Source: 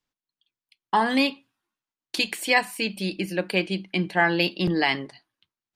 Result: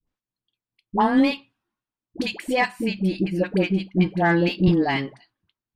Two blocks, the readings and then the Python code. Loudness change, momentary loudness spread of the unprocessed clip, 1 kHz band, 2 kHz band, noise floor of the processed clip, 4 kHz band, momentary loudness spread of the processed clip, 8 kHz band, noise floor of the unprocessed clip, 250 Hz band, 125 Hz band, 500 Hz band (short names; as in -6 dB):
+2.0 dB, 8 LU, +1.0 dB, -3.0 dB, under -85 dBFS, -5.0 dB, 10 LU, -8.5 dB, under -85 dBFS, +6.0 dB, +7.5 dB, +3.0 dB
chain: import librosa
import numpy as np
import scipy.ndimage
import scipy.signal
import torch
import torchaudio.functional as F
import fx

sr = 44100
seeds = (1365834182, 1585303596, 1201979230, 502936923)

y = fx.tilt_eq(x, sr, slope=-3.0)
y = fx.cheby_harmonics(y, sr, harmonics=(6, 8), levels_db=(-30, -42), full_scale_db=-7.0)
y = fx.dispersion(y, sr, late='highs', ms=73.0, hz=680.0)